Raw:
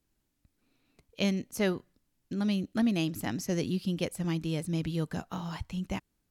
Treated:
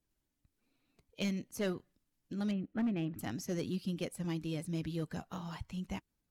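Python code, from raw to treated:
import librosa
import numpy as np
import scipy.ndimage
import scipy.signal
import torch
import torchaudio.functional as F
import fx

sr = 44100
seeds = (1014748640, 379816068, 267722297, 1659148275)

y = fx.spec_quant(x, sr, step_db=15)
y = fx.lowpass(y, sr, hz=2400.0, slope=24, at=(2.51, 3.19))
y = np.clip(10.0 ** (22.5 / 20.0) * y, -1.0, 1.0) / 10.0 ** (22.5 / 20.0)
y = F.gain(torch.from_numpy(y), -5.5).numpy()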